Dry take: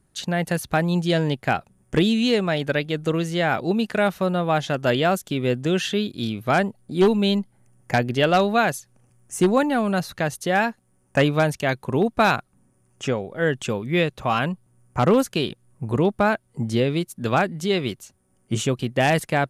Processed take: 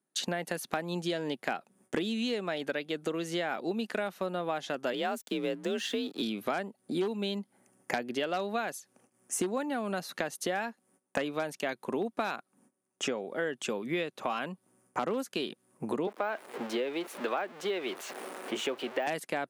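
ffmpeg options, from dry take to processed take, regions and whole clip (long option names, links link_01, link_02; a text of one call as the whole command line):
ffmpeg -i in.wav -filter_complex "[0:a]asettb=1/sr,asplit=3[link_01][link_02][link_03];[link_01]atrim=end=4.934[link_04];[link_02]atrim=start=4.93:end=6.22,asetpts=PTS-STARTPTS,afade=type=in:duration=0.004:curve=qsin,afade=type=out:start_time=1.286:duration=0.004:curve=qsin,aeval=exprs='sgn(val(0))*max(abs(val(0))-0.00501,0)':channel_layout=same,afreqshift=44[link_05];[link_03]atrim=start=6.216[link_06];[link_04][link_05]acrossfade=duration=0.004:curve1=hsin:curve2=qsin[link_07];[link_07][link_06]acrossfade=duration=0.004:curve1=qsin:curve2=hsin,asettb=1/sr,asplit=3[link_08][link_09][link_10];[link_08]atrim=end=16.074[link_11];[link_09]atrim=start=16.07:end=19.07,asetpts=PTS-STARTPTS,afade=type=in:duration=0.004:curve=qsin,afade=type=out:start_time=2.996:duration=0.004:curve=qsin,aeval=exprs='val(0)+0.5*0.0299*sgn(val(0))':channel_layout=same,acrossover=split=340 3300:gain=0.112 1 0.2[link_12][link_13][link_14];[link_12][link_13][link_14]amix=inputs=3:normalize=0,deesser=0.85[link_15];[link_10]atrim=start=19.066[link_16];[link_11][link_15]acrossfade=duration=0.004:curve1=hsin:curve2=qsin[link_17];[link_17][link_16]acrossfade=duration=0.004:curve1=qsin:curve2=hsin,agate=range=-17dB:threshold=-57dB:ratio=16:detection=peak,highpass=frequency=220:width=0.5412,highpass=frequency=220:width=1.3066,acompressor=threshold=-32dB:ratio=6,volume=2dB" out.wav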